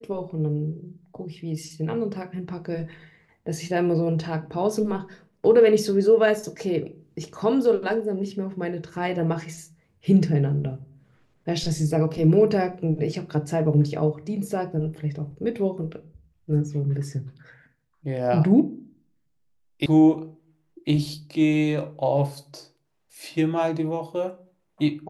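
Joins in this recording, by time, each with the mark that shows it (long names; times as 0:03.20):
0:19.86: cut off before it has died away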